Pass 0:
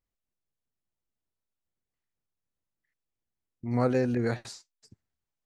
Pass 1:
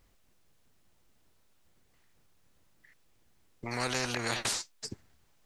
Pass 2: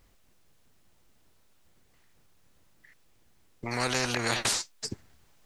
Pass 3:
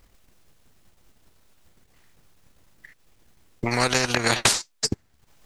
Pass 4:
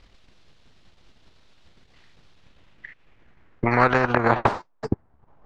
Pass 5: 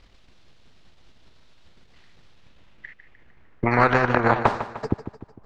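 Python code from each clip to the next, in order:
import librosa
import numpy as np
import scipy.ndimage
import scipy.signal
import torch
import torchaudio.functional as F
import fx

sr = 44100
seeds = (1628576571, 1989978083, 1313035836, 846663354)

y1 = fx.high_shelf(x, sr, hz=7800.0, db=-5.0)
y1 = fx.spectral_comp(y1, sr, ratio=4.0)
y1 = y1 * 10.0 ** (-3.5 / 20.0)
y2 = fx.rider(y1, sr, range_db=10, speed_s=2.0)
y2 = y2 * 10.0 ** (4.5 / 20.0)
y3 = fx.transient(y2, sr, attack_db=7, sustain_db=-11)
y3 = y3 * 10.0 ** (5.5 / 20.0)
y4 = fx.filter_sweep_lowpass(y3, sr, from_hz=4000.0, to_hz=970.0, start_s=2.28, end_s=4.47, q=1.6)
y4 = y4 * 10.0 ** (3.5 / 20.0)
y5 = fx.echo_feedback(y4, sr, ms=151, feedback_pct=49, wet_db=-11.5)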